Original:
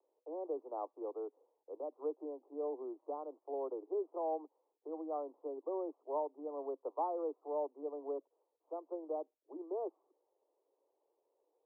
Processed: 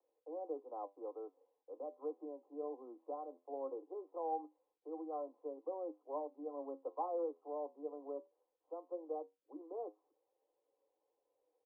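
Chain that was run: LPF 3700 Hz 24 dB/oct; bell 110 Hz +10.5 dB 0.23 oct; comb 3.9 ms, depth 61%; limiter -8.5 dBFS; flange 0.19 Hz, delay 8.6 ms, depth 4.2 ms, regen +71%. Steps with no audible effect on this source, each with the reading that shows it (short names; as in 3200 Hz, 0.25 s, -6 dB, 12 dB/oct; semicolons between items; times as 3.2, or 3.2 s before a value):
LPF 3700 Hz: input band ends at 1200 Hz; bell 110 Hz: input band starts at 250 Hz; limiter -8.5 dBFS: input peak -24.5 dBFS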